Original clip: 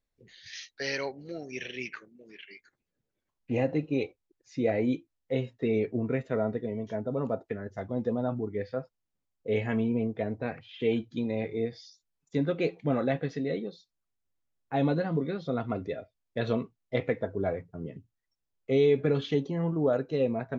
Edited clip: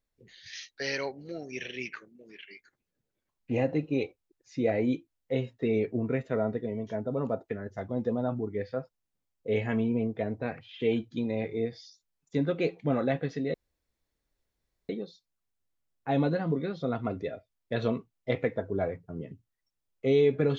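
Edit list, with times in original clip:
0:13.54: splice in room tone 1.35 s

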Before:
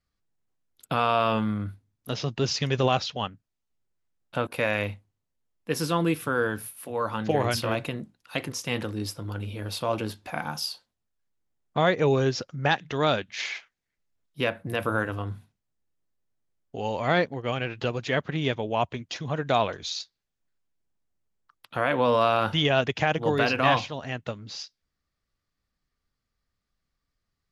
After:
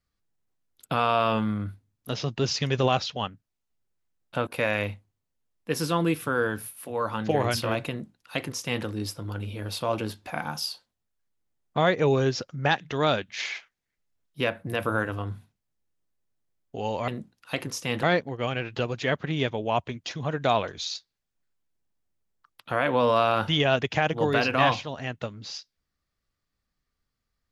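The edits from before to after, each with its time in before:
0:07.90–0:08.85: duplicate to 0:17.08

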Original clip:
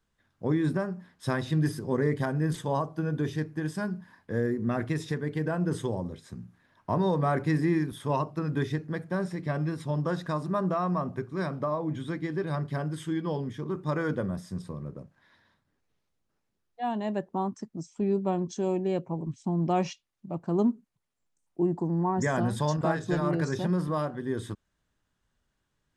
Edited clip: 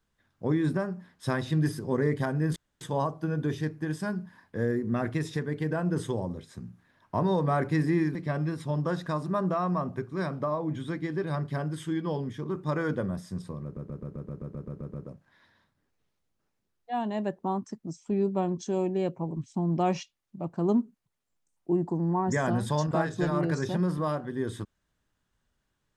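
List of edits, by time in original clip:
0:02.56: splice in room tone 0.25 s
0:07.90–0:09.35: remove
0:14.84: stutter 0.13 s, 11 plays

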